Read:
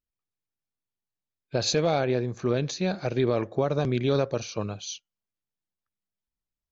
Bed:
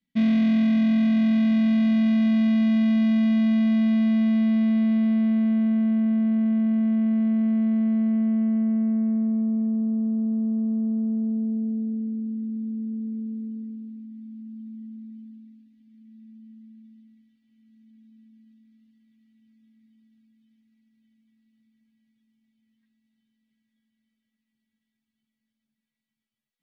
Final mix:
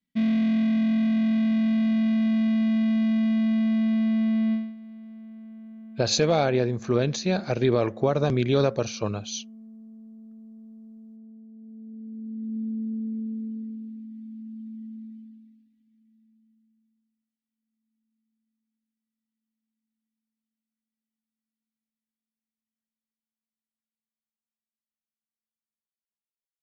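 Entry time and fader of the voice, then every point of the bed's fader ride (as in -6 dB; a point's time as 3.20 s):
4.45 s, +2.5 dB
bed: 4.53 s -2.5 dB
4.76 s -21.5 dB
11.50 s -21.5 dB
12.58 s 0 dB
15.04 s 0 dB
17.16 s -25.5 dB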